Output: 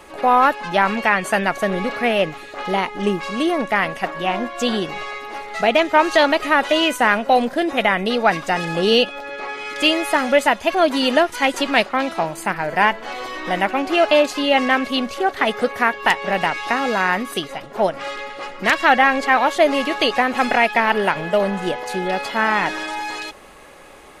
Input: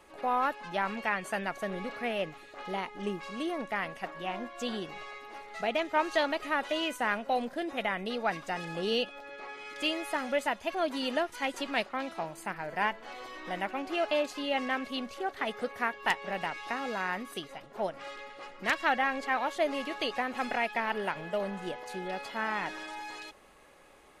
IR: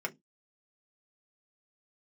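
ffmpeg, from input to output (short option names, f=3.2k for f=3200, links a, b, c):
-af "alimiter=level_in=16dB:limit=-1dB:release=50:level=0:latency=1,volume=-1.5dB"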